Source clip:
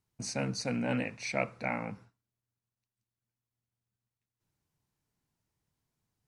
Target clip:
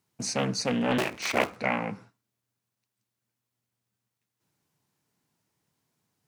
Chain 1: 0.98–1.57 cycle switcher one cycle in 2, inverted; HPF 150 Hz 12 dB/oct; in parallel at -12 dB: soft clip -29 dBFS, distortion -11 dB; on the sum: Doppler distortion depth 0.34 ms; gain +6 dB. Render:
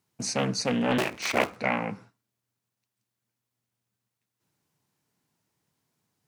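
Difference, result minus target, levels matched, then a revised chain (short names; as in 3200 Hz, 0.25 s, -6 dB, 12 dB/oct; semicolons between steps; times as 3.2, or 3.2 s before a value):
soft clip: distortion -7 dB
0.98–1.57 cycle switcher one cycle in 2, inverted; HPF 150 Hz 12 dB/oct; in parallel at -12 dB: soft clip -40.5 dBFS, distortion -4 dB; on the sum: Doppler distortion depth 0.34 ms; gain +6 dB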